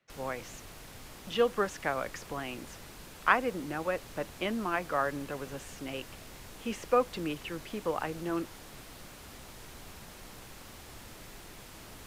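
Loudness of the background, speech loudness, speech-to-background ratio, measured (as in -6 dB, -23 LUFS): -48.0 LUFS, -33.5 LUFS, 14.5 dB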